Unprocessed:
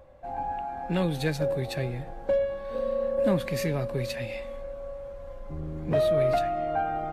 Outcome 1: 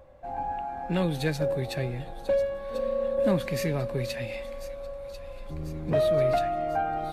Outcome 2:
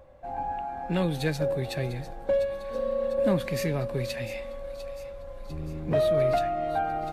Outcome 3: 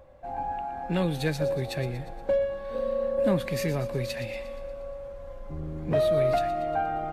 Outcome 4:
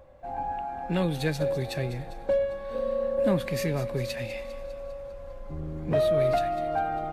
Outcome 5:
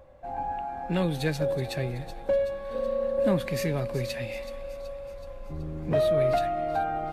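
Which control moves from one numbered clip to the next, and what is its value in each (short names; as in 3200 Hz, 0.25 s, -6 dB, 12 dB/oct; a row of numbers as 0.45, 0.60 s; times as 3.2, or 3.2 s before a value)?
thin delay, time: 1.043, 0.699, 0.118, 0.2, 0.376 s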